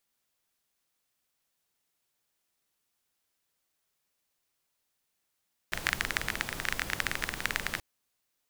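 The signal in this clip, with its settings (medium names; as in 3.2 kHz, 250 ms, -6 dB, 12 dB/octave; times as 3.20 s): rain from filtered ticks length 2.08 s, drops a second 19, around 1.8 kHz, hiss -5 dB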